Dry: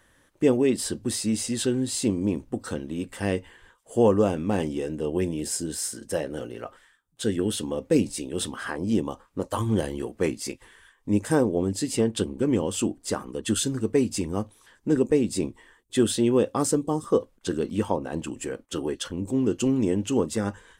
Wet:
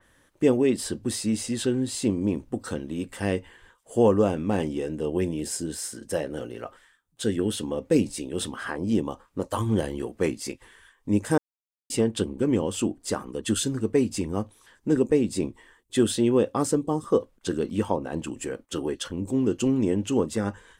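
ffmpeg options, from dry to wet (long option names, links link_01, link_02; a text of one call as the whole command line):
ffmpeg -i in.wav -filter_complex "[0:a]asplit=3[link_01][link_02][link_03];[link_01]atrim=end=11.38,asetpts=PTS-STARTPTS,afade=type=out:start_time=11.376:duration=0.004:curve=hsin[link_04];[link_02]atrim=start=11.38:end=11.9,asetpts=PTS-STARTPTS,volume=0[link_05];[link_03]atrim=start=11.9,asetpts=PTS-STARTPTS,afade=type=in:duration=0.004:curve=hsin[link_06];[link_04][link_05][link_06]concat=n=3:v=0:a=1,adynamicequalizer=threshold=0.00631:dfrequency=3700:dqfactor=0.7:tfrequency=3700:tqfactor=0.7:attack=5:release=100:ratio=0.375:range=2.5:mode=cutabove:tftype=highshelf" out.wav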